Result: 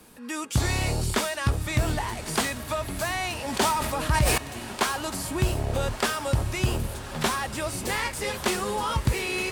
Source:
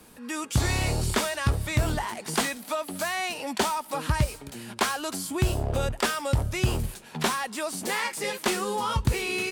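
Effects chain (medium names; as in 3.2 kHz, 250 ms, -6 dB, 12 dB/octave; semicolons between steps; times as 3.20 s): echo that smears into a reverb 1247 ms, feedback 60%, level -11.5 dB; 3.40–4.38 s: decay stretcher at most 32 dB/s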